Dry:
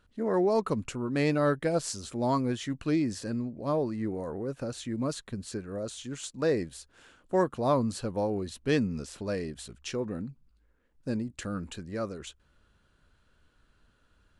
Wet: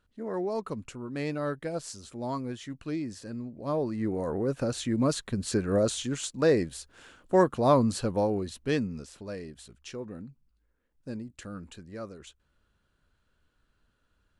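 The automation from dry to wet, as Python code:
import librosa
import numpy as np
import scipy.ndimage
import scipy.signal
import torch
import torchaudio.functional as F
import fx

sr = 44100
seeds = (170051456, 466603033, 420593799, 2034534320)

y = fx.gain(x, sr, db=fx.line((3.28, -6.0), (4.36, 5.5), (5.33, 5.5), (5.75, 11.5), (6.28, 4.0), (8.12, 4.0), (9.22, -6.0)))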